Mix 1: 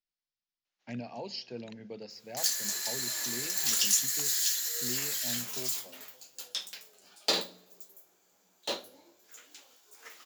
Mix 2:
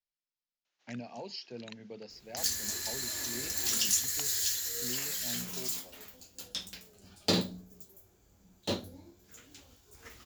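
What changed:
first sound +6.0 dB
second sound: remove high-pass filter 560 Hz 12 dB per octave
reverb: off

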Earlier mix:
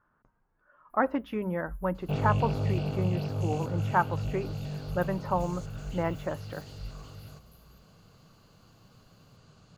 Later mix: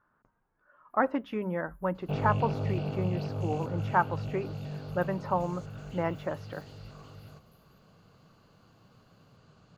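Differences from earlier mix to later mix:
first sound −8.0 dB
second sound: add high-shelf EQ 4,600 Hz −11 dB
master: add low-shelf EQ 100 Hz −6.5 dB

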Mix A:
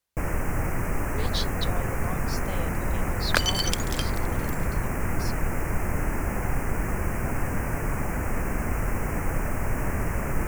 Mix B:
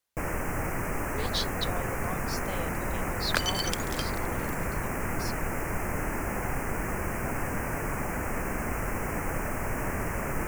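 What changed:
second sound −4.5 dB
master: add low-shelf EQ 170 Hz −8 dB

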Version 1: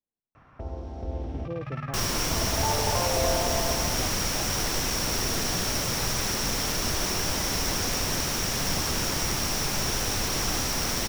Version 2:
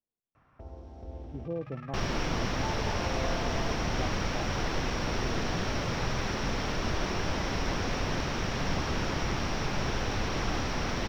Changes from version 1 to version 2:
first sound −9.5 dB
second sound: add high-frequency loss of the air 240 metres

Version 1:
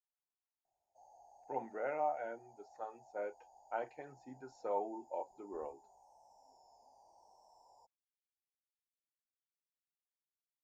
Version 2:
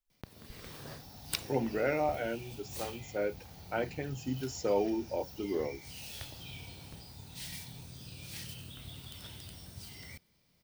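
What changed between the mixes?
speech: remove resonant band-pass 880 Hz, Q 2.2
first sound: unmuted

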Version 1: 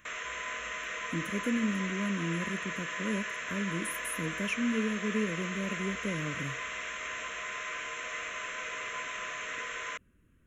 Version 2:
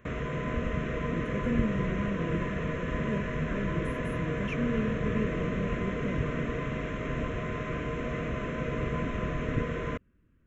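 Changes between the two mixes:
background: remove high-pass filter 1,100 Hz 12 dB per octave
master: add head-to-tape spacing loss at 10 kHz 22 dB

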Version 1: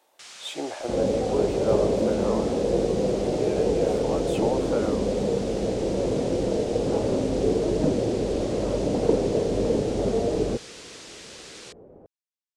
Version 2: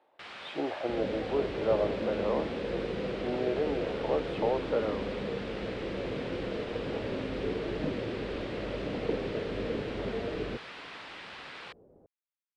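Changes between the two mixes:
first sound +8.0 dB
second sound −9.5 dB
master: add high-frequency loss of the air 450 metres

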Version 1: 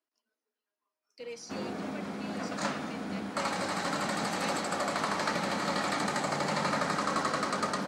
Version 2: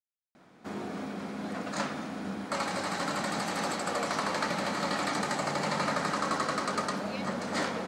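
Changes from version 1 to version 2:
speech: entry +2.70 s
background: entry −0.85 s

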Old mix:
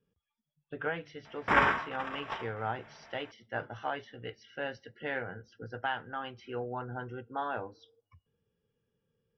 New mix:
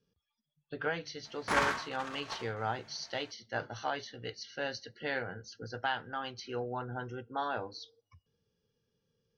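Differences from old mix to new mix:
background −5.0 dB
master: remove Savitzky-Golay smoothing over 25 samples

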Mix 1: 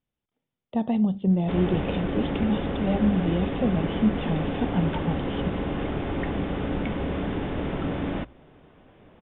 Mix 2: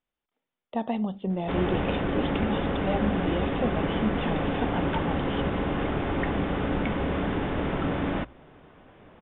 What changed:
speech: add parametric band 120 Hz −12.5 dB 1.8 octaves
master: add parametric band 1,300 Hz +4.5 dB 1.9 octaves

